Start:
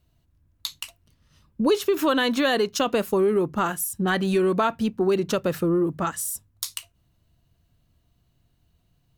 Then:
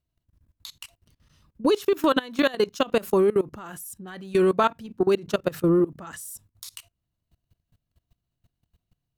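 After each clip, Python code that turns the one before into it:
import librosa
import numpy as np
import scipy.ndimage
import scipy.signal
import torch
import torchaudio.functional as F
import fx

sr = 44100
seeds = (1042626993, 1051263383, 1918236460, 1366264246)

y = fx.level_steps(x, sr, step_db=21)
y = F.gain(torch.from_numpy(y), 3.0).numpy()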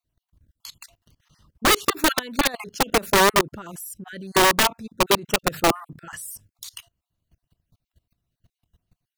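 y = fx.spec_dropout(x, sr, seeds[0], share_pct=31)
y = (np.mod(10.0 ** (15.0 / 20.0) * y + 1.0, 2.0) - 1.0) / 10.0 ** (15.0 / 20.0)
y = F.gain(torch.from_numpy(y), 3.5).numpy()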